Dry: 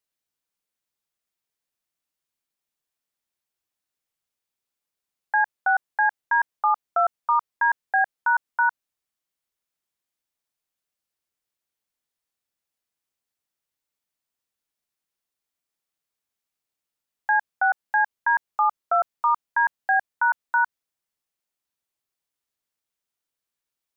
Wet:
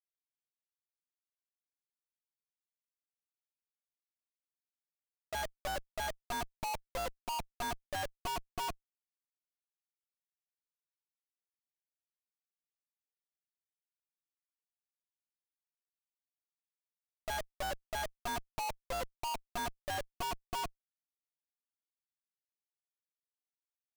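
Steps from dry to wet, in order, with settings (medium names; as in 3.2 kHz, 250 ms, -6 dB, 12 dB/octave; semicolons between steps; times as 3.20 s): formant shift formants -5 st; Schmitt trigger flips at -36.5 dBFS; trim -6 dB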